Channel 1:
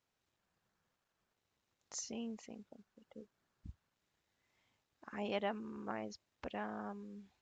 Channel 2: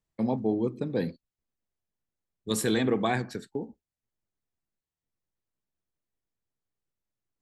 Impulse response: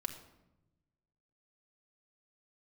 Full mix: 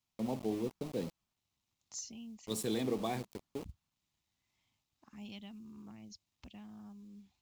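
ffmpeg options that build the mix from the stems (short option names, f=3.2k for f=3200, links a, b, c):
-filter_complex "[0:a]equalizer=f=480:w=1.3:g=-14,acrossover=split=270|3000[a][b][c];[b]acompressor=threshold=-60dB:ratio=5[d];[a][d][c]amix=inputs=3:normalize=0,acrusher=bits=8:mode=log:mix=0:aa=0.000001,volume=1dB[e];[1:a]lowshelf=f=81:g=-6.5,aeval=exprs='val(0)*gte(abs(val(0)),0.02)':c=same,volume=-8dB[f];[e][f]amix=inputs=2:normalize=0,equalizer=f=1.6k:t=o:w=0.69:g=-11.5"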